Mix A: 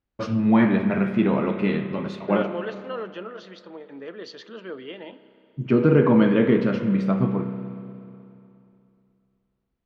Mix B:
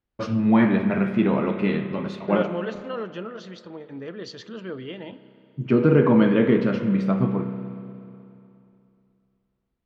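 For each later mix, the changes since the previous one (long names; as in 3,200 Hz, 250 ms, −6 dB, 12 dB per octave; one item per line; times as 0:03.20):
second voice: remove band-pass filter 300–5,000 Hz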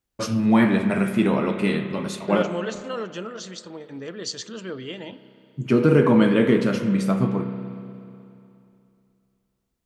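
master: remove high-frequency loss of the air 250 metres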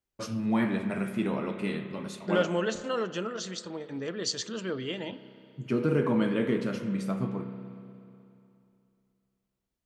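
first voice −9.5 dB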